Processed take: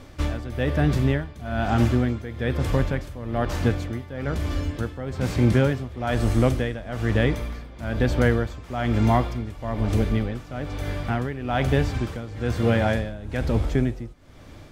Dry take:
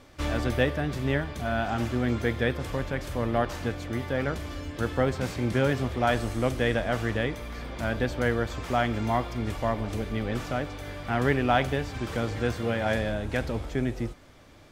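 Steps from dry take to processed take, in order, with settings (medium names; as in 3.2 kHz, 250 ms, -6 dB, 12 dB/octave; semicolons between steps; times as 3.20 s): bass shelf 260 Hz +7.5 dB; in parallel at -2 dB: peak limiter -14 dBFS, peak gain reduction 7.5 dB; on the sum: tremolo 1.1 Hz, depth 83%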